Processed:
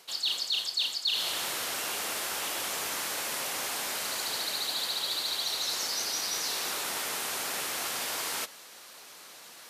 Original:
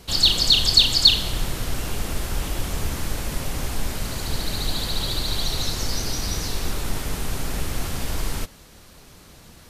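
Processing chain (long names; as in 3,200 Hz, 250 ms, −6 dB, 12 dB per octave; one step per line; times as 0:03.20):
Bessel high-pass filter 770 Hz, order 2
reversed playback
downward compressor 6 to 1, threshold −31 dBFS, peak gain reduction 20.5 dB
reversed playback
level +2.5 dB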